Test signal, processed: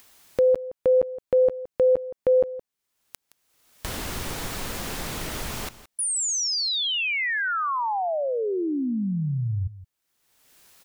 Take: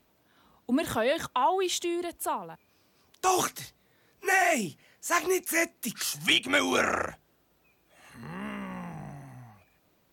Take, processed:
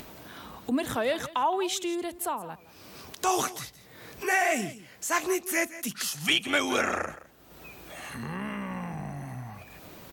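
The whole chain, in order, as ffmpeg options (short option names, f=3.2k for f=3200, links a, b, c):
-af "acompressor=mode=upward:threshold=-27dB:ratio=2.5,aecho=1:1:169:0.158,volume=-1dB"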